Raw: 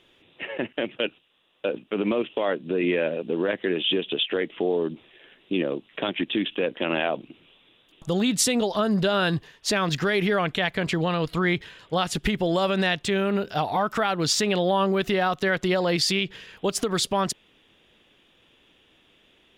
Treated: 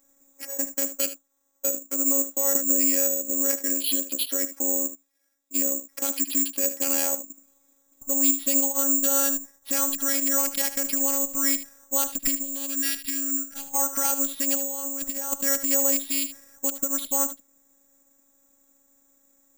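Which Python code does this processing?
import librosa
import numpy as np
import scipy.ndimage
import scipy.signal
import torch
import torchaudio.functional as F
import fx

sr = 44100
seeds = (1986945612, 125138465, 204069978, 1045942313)

y = fx.wiener(x, sr, points=15)
y = fx.pre_emphasis(y, sr, coefficient=0.9, at=(4.86, 5.54), fade=0.02)
y = fx.spec_box(y, sr, start_s=12.41, length_s=1.33, low_hz=230.0, high_hz=1400.0, gain_db=-17)
y = fx.over_compress(y, sr, threshold_db=-28.0, ratio=-0.5, at=(14.54, 15.4))
y = fx.robotise(y, sr, hz=275.0)
y = y + 10.0 ** (-13.0 / 20.0) * np.pad(y, (int(76 * sr / 1000.0), 0))[:len(y)]
y = (np.kron(scipy.signal.resample_poly(y, 1, 6), np.eye(6)[0]) * 6)[:len(y)]
y = fx.band_squash(y, sr, depth_pct=100, at=(2.55, 3.1))
y = y * 10.0 ** (-5.0 / 20.0)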